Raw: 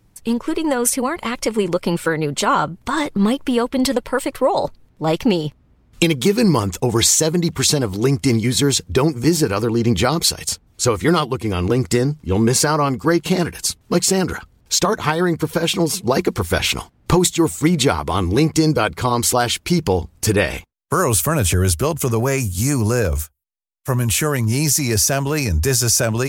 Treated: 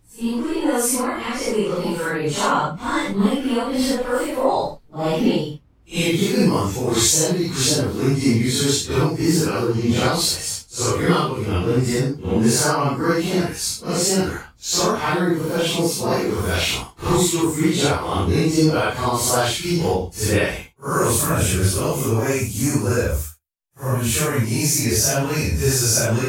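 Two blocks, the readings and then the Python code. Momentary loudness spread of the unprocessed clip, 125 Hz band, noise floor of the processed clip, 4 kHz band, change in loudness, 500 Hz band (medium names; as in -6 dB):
6 LU, -2.0 dB, -47 dBFS, -1.5 dB, -1.5 dB, -1.5 dB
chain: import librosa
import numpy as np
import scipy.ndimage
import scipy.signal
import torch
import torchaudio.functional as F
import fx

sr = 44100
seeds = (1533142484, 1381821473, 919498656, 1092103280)

y = fx.phase_scramble(x, sr, seeds[0], window_ms=200)
y = F.gain(torch.from_numpy(y), -1.5).numpy()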